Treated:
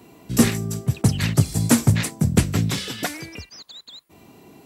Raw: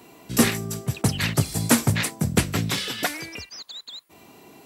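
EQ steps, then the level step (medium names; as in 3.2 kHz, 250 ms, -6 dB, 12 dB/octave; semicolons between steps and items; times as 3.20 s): bass shelf 330 Hz +9.5 dB; dynamic bell 7 kHz, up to +4 dB, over -38 dBFS, Q 1.2; -3.0 dB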